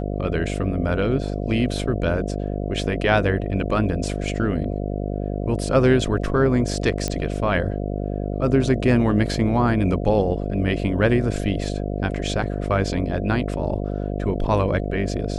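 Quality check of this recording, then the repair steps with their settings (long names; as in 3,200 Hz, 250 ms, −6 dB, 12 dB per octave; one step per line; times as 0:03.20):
mains buzz 50 Hz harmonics 14 −26 dBFS
0:07.08: click −10 dBFS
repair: click removal
hum removal 50 Hz, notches 14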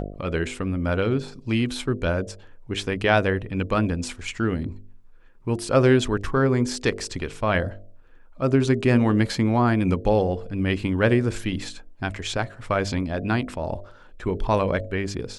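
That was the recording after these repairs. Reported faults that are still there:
none of them is left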